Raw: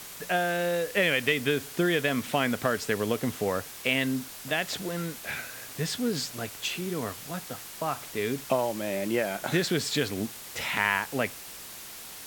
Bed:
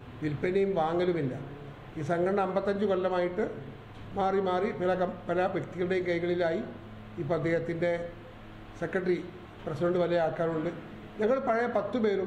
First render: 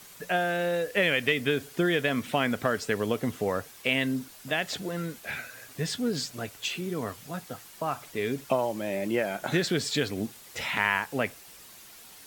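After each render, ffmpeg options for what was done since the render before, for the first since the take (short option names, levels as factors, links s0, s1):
-af "afftdn=nr=8:nf=-43"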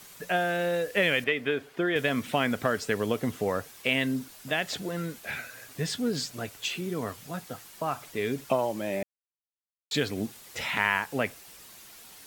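-filter_complex "[0:a]asettb=1/sr,asplit=3[s0][s1][s2];[s0]atrim=end=1.244[s3];[s1]atrim=start=1.24:end=1.96,asetpts=PTS-STARTPTS,afade=t=in:d=0.004:c=qsin,afade=t=out:st=0.716:d=0.004:c=qsin,bass=f=250:g=-9,treble=f=4000:g=-14[s4];[s2]atrim=start=1.956[s5];[s3][s4]acrossfade=d=0.004:c1=hsin:c2=qsin[s6];[s6][s5]acrossfade=d=0.004:c1=qsin:c2=hsin,asplit=3[s7][s8][s9];[s7]atrim=end=9.03,asetpts=PTS-STARTPTS,afade=t=out:st=9.026:d=0.004:c=hsin[s10];[s8]atrim=start=9.03:end=9.91,asetpts=PTS-STARTPTS,volume=0[s11];[s9]atrim=start=9.91,asetpts=PTS-STARTPTS,afade=t=in:d=0.004:c=hsin[s12];[s10][s11][s12]concat=n=3:v=0:a=1"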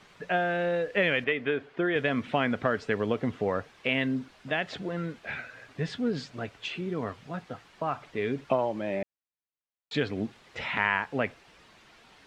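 -af "lowpass=2900"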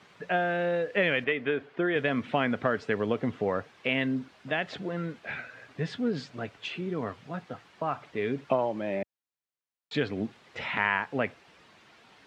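-af "highpass=87,highshelf=f=6000:g=-5.5"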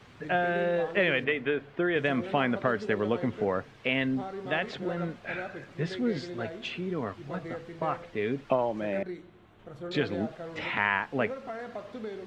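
-filter_complex "[1:a]volume=0.282[s0];[0:a][s0]amix=inputs=2:normalize=0"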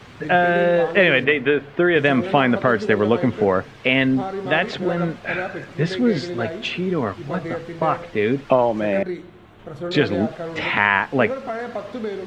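-af "volume=3.35,alimiter=limit=0.708:level=0:latency=1"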